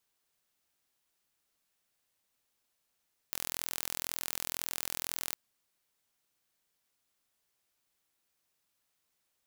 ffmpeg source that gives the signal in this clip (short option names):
-f lavfi -i "aevalsrc='0.398*eq(mod(n,1050),0)':d=2.02:s=44100"